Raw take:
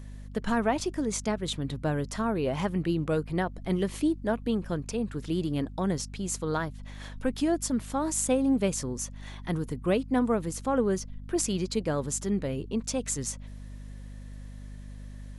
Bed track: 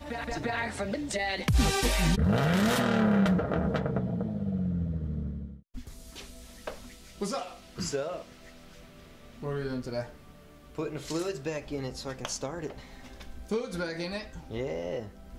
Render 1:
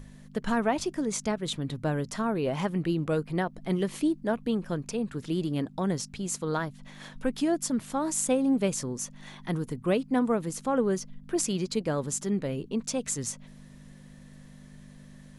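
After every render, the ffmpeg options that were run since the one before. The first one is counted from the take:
-af "bandreject=f=50:t=h:w=6,bandreject=f=100:t=h:w=6"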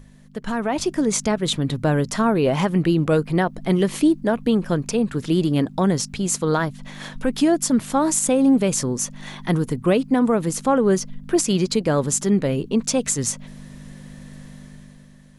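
-af "alimiter=limit=-19dB:level=0:latency=1:release=76,dynaudnorm=f=110:g=13:m=10dB"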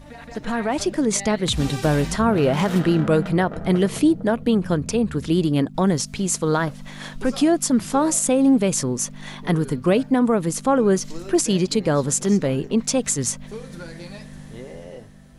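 -filter_complex "[1:a]volume=-5dB[a];[0:a][a]amix=inputs=2:normalize=0"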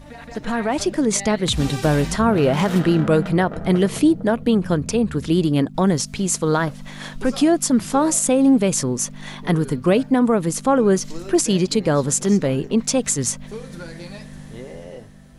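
-af "volume=1.5dB"

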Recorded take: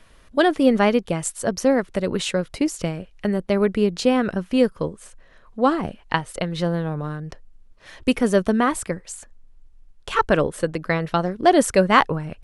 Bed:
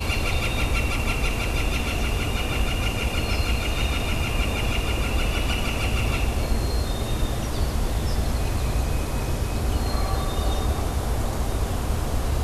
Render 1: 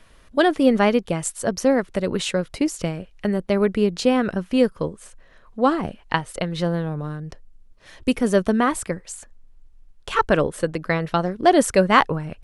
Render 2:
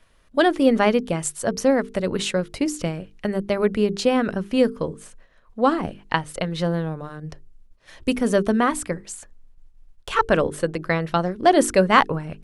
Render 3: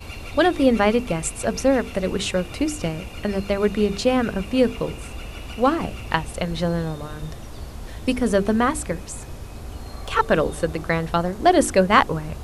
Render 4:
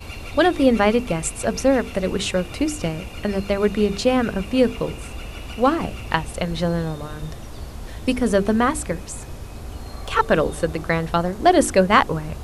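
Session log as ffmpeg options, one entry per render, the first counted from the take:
-filter_complex "[0:a]asettb=1/sr,asplit=3[a][b][c];[a]atrim=end=6.854[d];[b]atrim=start=6.85:end=8.27,asetpts=PTS-STARTPTS,afade=t=in:d=0.004:c=qsin,afade=t=out:st=1.416:d=0.004:c=qsin,equalizer=f=1.4k:w=0.38:g=-3.5[e];[c]atrim=start=8.266[f];[d][e]acrossfade=d=0.004:c1=hsin:c2=qsin[g];[g][f]acrossfade=d=0.004:c1=qsin:c2=hsin"
-af "agate=range=-7dB:threshold=-47dB:ratio=16:detection=peak,bandreject=f=50:t=h:w=6,bandreject=f=100:t=h:w=6,bandreject=f=150:t=h:w=6,bandreject=f=200:t=h:w=6,bandreject=f=250:t=h:w=6,bandreject=f=300:t=h:w=6,bandreject=f=350:t=h:w=6,bandreject=f=400:t=h:w=6,bandreject=f=450:t=h:w=6"
-filter_complex "[1:a]volume=-11dB[a];[0:a][a]amix=inputs=2:normalize=0"
-af "volume=1dB,alimiter=limit=-2dB:level=0:latency=1"

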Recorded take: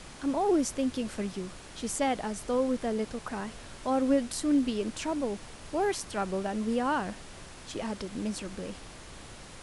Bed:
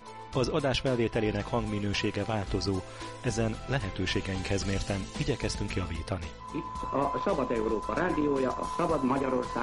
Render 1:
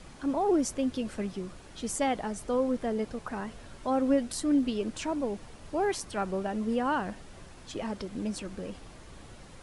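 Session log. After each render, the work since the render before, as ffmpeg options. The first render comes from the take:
-af "afftdn=nr=7:nf=-47"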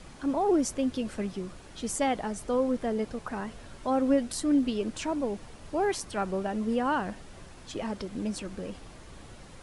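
-af "volume=1dB"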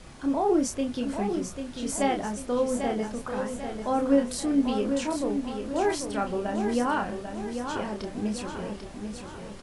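-filter_complex "[0:a]asplit=2[a][b];[b]adelay=29,volume=-5dB[c];[a][c]amix=inputs=2:normalize=0,aecho=1:1:793|1586|2379|3172|3965|4758:0.447|0.21|0.0987|0.0464|0.0218|0.0102"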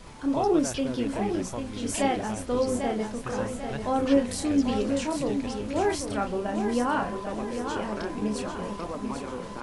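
-filter_complex "[1:a]volume=-7.5dB[a];[0:a][a]amix=inputs=2:normalize=0"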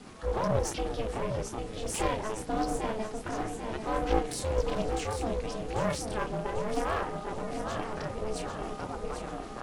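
-af "aeval=exprs='val(0)*sin(2*PI*220*n/s)':c=same,aeval=exprs='clip(val(0),-1,0.0398)':c=same"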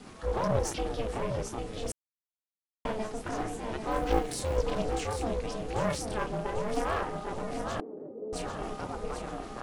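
-filter_complex "[0:a]asettb=1/sr,asplit=3[a][b][c];[a]atrim=end=3.914[d];[b]atrim=start=3.91:end=4.57,asetpts=PTS-STARTPTS,afade=t=in:d=0.004:c=qsin,afade=t=out:st=0.656:d=0.004:c=qsin,acrusher=bits=8:mode=log:mix=0:aa=0.000001[e];[c]atrim=start=4.566[f];[d][e]acrossfade=d=0.004:c1=hsin:c2=qsin[g];[g][f]acrossfade=d=0.004:c1=qsin:c2=hsin,asettb=1/sr,asplit=3[h][i][j];[h]atrim=end=7.804[k];[i]atrim=start=7.8:end=8.33,asetpts=PTS-STARTPTS,afade=t=in:d=0.004:c=qsin,afade=t=out:st=0.526:d=0.004:c=qsin,asuperpass=centerf=340:order=4:qfactor=1.5[l];[j]atrim=start=8.326[m];[k][l]acrossfade=d=0.004:c1=hsin:c2=qsin[n];[n][m]acrossfade=d=0.004:c1=qsin:c2=hsin,asplit=3[o][p][q];[o]atrim=end=1.92,asetpts=PTS-STARTPTS,afade=t=out:st=1.916:d=0.004:c=hsin[r];[p]atrim=start=1.92:end=2.85,asetpts=PTS-STARTPTS,volume=0[s];[q]atrim=start=2.85,asetpts=PTS-STARTPTS,afade=t=in:d=0.004:c=hsin[t];[r][s][t]concat=n=3:v=0:a=1"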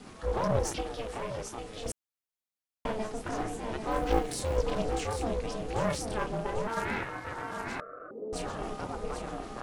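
-filter_complex "[0:a]asettb=1/sr,asplit=3[a][b][c];[a]atrim=end=0.814[d];[b]atrim=start=0.81:end=1.86,asetpts=PTS-STARTPTS,afade=t=in:d=0.004:c=qsin,afade=t=out:st=1.046:d=0.004:c=qsin,lowshelf=f=470:g=-7.5[e];[c]atrim=start=1.856[f];[d][e]acrossfade=d=0.004:c1=hsin:c2=qsin[g];[g][f]acrossfade=d=0.004:c1=qsin:c2=hsin,asettb=1/sr,asplit=3[h][i][j];[h]atrim=end=6.674[k];[i]atrim=start=6.67:end=8.11,asetpts=PTS-STARTPTS,afade=t=in:d=0.004:c=qsin,afade=t=out:st=1.436:d=0.004:c=qsin,aeval=exprs='val(0)*sin(2*PI*910*n/s)':c=same[l];[j]atrim=start=8.106[m];[k][l]acrossfade=d=0.004:c1=hsin:c2=qsin[n];[n][m]acrossfade=d=0.004:c1=qsin:c2=hsin"

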